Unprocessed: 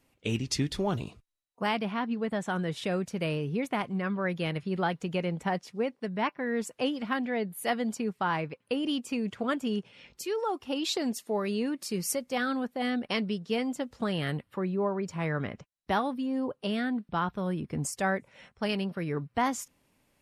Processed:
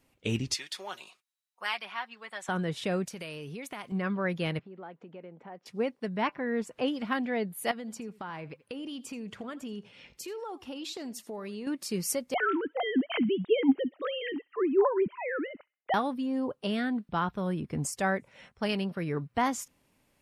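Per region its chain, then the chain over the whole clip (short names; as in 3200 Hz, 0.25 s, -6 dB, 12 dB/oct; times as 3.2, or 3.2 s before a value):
0.54–2.49 HPF 1100 Hz + comb 5.4 ms, depth 47%
3.07–3.92 tilt +2.5 dB/oct + compressor 4:1, threshold -37 dBFS
4.59–5.66 tape spacing loss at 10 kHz 45 dB + compressor 5:1, threshold -39 dBFS + HPF 290 Hz
6.29–6.88 high shelf 4300 Hz -11 dB + upward compressor, threshold -37 dBFS
7.71–11.67 compressor 4:1, threshold -37 dBFS + echo 82 ms -20 dB
12.34–15.94 sine-wave speech + low shelf 280 Hz +8 dB + thin delay 65 ms, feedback 33%, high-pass 2000 Hz, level -20 dB
whole clip: dry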